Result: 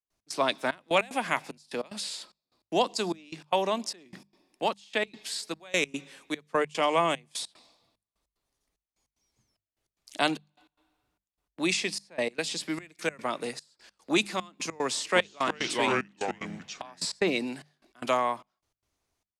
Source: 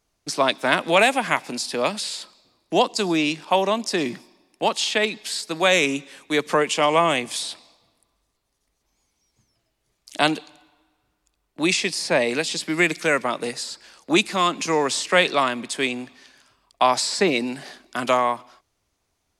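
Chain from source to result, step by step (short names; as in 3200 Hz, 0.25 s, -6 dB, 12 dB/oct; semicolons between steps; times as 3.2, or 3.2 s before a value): 14.84–17.05 echoes that change speed 0.315 s, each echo -3 st, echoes 2; step gate ".x.xxxx." 149 bpm -24 dB; notches 50/100/150/200 Hz; gain -6.5 dB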